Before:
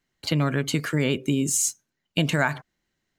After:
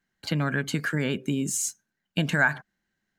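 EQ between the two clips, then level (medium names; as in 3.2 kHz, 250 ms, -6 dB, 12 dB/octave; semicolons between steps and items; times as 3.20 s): graphic EQ with 31 bands 200 Hz +10 dB, 800 Hz +4 dB, 1.6 kHz +11 dB; -5.0 dB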